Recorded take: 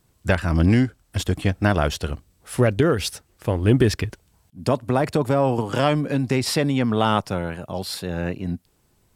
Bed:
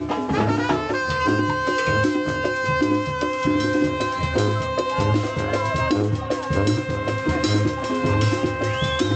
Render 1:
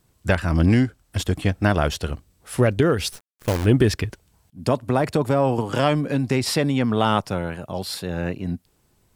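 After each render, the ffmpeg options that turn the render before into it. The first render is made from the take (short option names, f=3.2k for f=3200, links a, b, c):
-filter_complex "[0:a]asplit=3[a][b][c];[a]afade=t=out:st=3.11:d=0.02[d];[b]acrusher=bits=5:dc=4:mix=0:aa=0.000001,afade=t=in:st=3.11:d=0.02,afade=t=out:st=3.64:d=0.02[e];[c]afade=t=in:st=3.64:d=0.02[f];[d][e][f]amix=inputs=3:normalize=0"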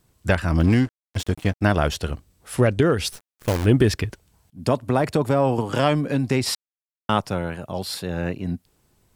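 -filter_complex "[0:a]asettb=1/sr,asplit=3[a][b][c];[a]atrim=end=0.604[d];[b]atrim=start=0.6:end=1.61,asetpts=PTS-STARTPTS,afade=t=in:d=0.004:c=qsin,afade=t=out:st=1.006:d=0.004:c=qsin,aeval=exprs='sgn(val(0))*max(abs(val(0))-0.0178,0)':c=same[e];[c]atrim=start=1.606[f];[d][e]acrossfade=d=0.004:c1=hsin:c2=qsin[g];[g][f]acrossfade=d=0.004:c1=qsin:c2=hsin,asettb=1/sr,asplit=3[h][i][j];[h]atrim=end=2.564[k];[i]atrim=start=2.56:end=3.05,asetpts=PTS-STARTPTS,afade=t=in:d=0.004:c=qsin,afade=t=out:st=0.486:d=0.004:c=qsin,lowpass=f=12k:w=0.5412,lowpass=f=12k:w=1.3066[l];[j]atrim=start=3.046[m];[k][l]acrossfade=d=0.004:c1=hsin:c2=qsin[n];[n][m]acrossfade=d=0.004:c1=qsin:c2=hsin,asplit=3[o][p][q];[o]atrim=end=6.55,asetpts=PTS-STARTPTS,afade=t=out:st=6.546:d=0.004:c=hsin[r];[p]atrim=start=6.55:end=7.09,asetpts=PTS-STARTPTS,volume=0[s];[q]atrim=start=7.09,asetpts=PTS-STARTPTS,afade=t=in:d=0.004:c=hsin[t];[r][s][t]concat=n=3:v=0:a=1"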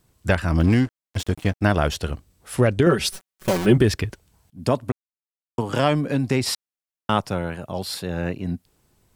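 -filter_complex "[0:a]asettb=1/sr,asplit=3[a][b][c];[a]atrim=end=2.864[d];[b]atrim=start=2.86:end=3.78,asetpts=PTS-STARTPTS,afade=t=in:d=0.004:c=qsin,afade=t=out:st=0.916:d=0.004:c=qsin,aecho=1:1:5.3:0.97,atrim=end_sample=40572[e];[c]atrim=start=3.776[f];[d][e]acrossfade=d=0.004:c1=hsin:c2=qsin[g];[g][f]acrossfade=d=0.004:c1=qsin:c2=hsin,asplit=3[h][i][j];[h]atrim=end=4.92,asetpts=PTS-STARTPTS,afade=t=out:st=4.916:d=0.004:c=hsin[k];[i]atrim=start=4.92:end=5.58,asetpts=PTS-STARTPTS,volume=0[l];[j]atrim=start=5.58,asetpts=PTS-STARTPTS,afade=t=in:d=0.004:c=hsin[m];[k][l][m]concat=n=3:v=0:a=1"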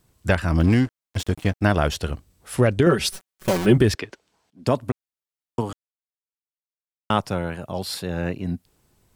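-filter_complex "[0:a]asettb=1/sr,asplit=3[a][b][c];[a]atrim=end=3.954[d];[b]atrim=start=3.95:end=4.67,asetpts=PTS-STARTPTS,afade=t=in:d=0.004:c=qsin,afade=t=out:st=0.716:d=0.004:c=qsin,acrossover=split=240 7000:gain=0.0708 1 0.141[e][f][g];[e][f][g]amix=inputs=3:normalize=0[h];[c]atrim=start=4.666[i];[d][h]acrossfade=d=0.004:c1=hsin:c2=qsin[j];[j][i]acrossfade=d=0.004:c1=qsin:c2=hsin,asplit=3[k][l][m];[k]atrim=end=5.73,asetpts=PTS-STARTPTS,afade=t=out:st=5.726:d=0.004:c=hsin[n];[l]atrim=start=5.73:end=7.1,asetpts=PTS-STARTPTS,volume=0[o];[m]atrim=start=7.1,asetpts=PTS-STARTPTS,afade=t=in:d=0.004:c=hsin[p];[n][o][p]concat=n=3:v=0:a=1"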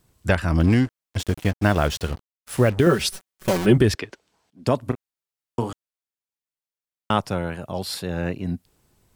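-filter_complex "[0:a]asettb=1/sr,asplit=3[a][b][c];[a]atrim=end=1.254[d];[b]atrim=start=1.25:end=3.03,asetpts=PTS-STARTPTS,afade=t=in:d=0.004:c=qsin,afade=t=out:st=1.776:d=0.004:c=qsin,acrusher=bits=5:mix=0:aa=0.5[e];[c]atrim=start=3.026[f];[d][e]acrossfade=d=0.004:c1=hsin:c2=qsin[g];[g][f]acrossfade=d=0.004:c1=qsin:c2=hsin,asettb=1/sr,asplit=3[h][i][j];[h]atrim=end=4.824[k];[i]atrim=start=4.82:end=5.7,asetpts=PTS-STARTPTS,afade=t=in:d=0.004:c=qsin,afade=t=out:st=0.876:d=0.004:c=qsin,asplit=2[l][m];[m]adelay=33,volume=-10dB[n];[l][n]amix=inputs=2:normalize=0,atrim=end_sample=38808[o];[j]atrim=start=5.696[p];[k][o]acrossfade=d=0.004:c1=hsin:c2=qsin[q];[q][p]acrossfade=d=0.004:c1=qsin:c2=hsin"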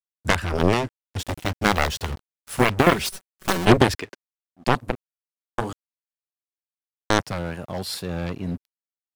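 -af "aeval=exprs='0.668*(cos(1*acos(clip(val(0)/0.668,-1,1)))-cos(1*PI/2))+0.211*(cos(7*acos(clip(val(0)/0.668,-1,1)))-cos(7*PI/2))':c=same,aeval=exprs='sgn(val(0))*max(abs(val(0))-0.00501,0)':c=same"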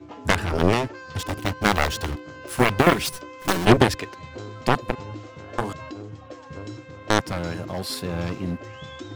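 -filter_complex "[1:a]volume=-16.5dB[a];[0:a][a]amix=inputs=2:normalize=0"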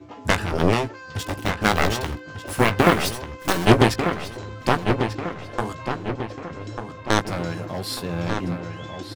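-filter_complex "[0:a]asplit=2[a][b];[b]adelay=18,volume=-10dB[c];[a][c]amix=inputs=2:normalize=0,asplit=2[d][e];[e]adelay=1193,lowpass=f=3.2k:p=1,volume=-7dB,asplit=2[f][g];[g]adelay=1193,lowpass=f=3.2k:p=1,volume=0.48,asplit=2[h][i];[i]adelay=1193,lowpass=f=3.2k:p=1,volume=0.48,asplit=2[j][k];[k]adelay=1193,lowpass=f=3.2k:p=1,volume=0.48,asplit=2[l][m];[m]adelay=1193,lowpass=f=3.2k:p=1,volume=0.48,asplit=2[n][o];[o]adelay=1193,lowpass=f=3.2k:p=1,volume=0.48[p];[d][f][h][j][l][n][p]amix=inputs=7:normalize=0"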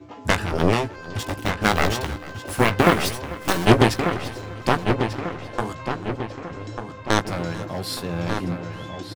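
-af "aecho=1:1:443|886|1329:0.112|0.037|0.0122"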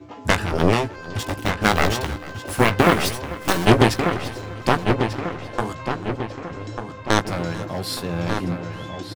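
-af "volume=1.5dB,alimiter=limit=-2dB:level=0:latency=1"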